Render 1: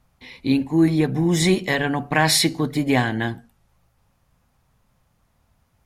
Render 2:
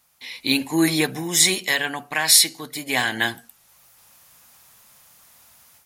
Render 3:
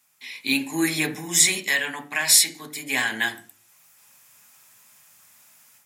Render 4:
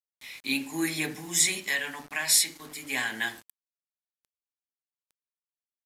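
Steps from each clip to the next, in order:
spectral tilt +4.5 dB per octave; automatic gain control gain up to 11 dB; level −1 dB
convolution reverb RT60 0.40 s, pre-delay 3 ms, DRR 6 dB; level −2.5 dB
bit reduction 7 bits; downsampling to 32,000 Hz; level −6 dB

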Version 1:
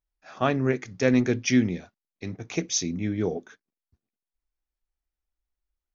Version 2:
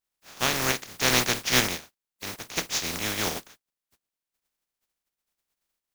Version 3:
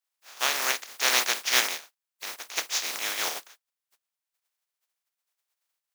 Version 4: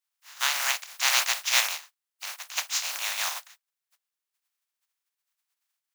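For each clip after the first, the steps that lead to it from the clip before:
compressing power law on the bin magnitudes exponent 0.21; level −1.5 dB
high-pass filter 660 Hz 12 dB per octave
frequency shifter +300 Hz

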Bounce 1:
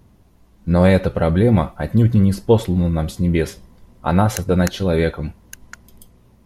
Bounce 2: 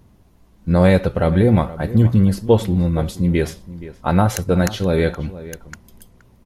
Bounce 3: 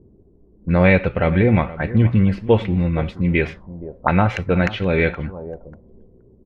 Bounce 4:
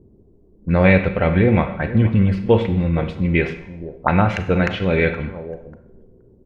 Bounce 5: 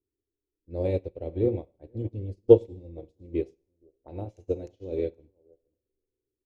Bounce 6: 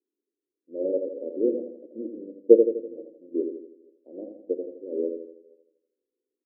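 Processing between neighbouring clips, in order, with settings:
slap from a distant wall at 81 metres, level −16 dB
envelope-controlled low-pass 380–2,400 Hz up, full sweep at −17.5 dBFS; level −1.5 dB
four-comb reverb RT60 0.76 s, combs from 32 ms, DRR 9.5 dB
drawn EQ curve 100 Hz 0 dB, 200 Hz −15 dB, 300 Hz +7 dB, 490 Hz +3 dB, 850 Hz −10 dB, 1,400 Hz −29 dB, 2,100 Hz −22 dB, 6,400 Hz +9 dB; expander for the loud parts 2.5 to 1, over −32 dBFS; level −1 dB
elliptic band-pass filter 230–570 Hz, stop band 50 dB; repeating echo 82 ms, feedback 48%, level −6 dB; level +1.5 dB

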